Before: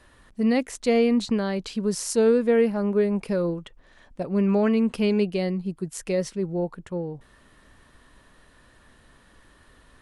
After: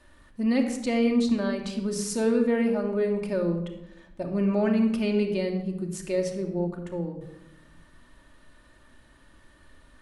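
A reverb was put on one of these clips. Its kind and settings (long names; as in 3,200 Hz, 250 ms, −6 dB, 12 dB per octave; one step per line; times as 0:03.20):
rectangular room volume 3,100 cubic metres, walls furnished, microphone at 2.6 metres
level −4.5 dB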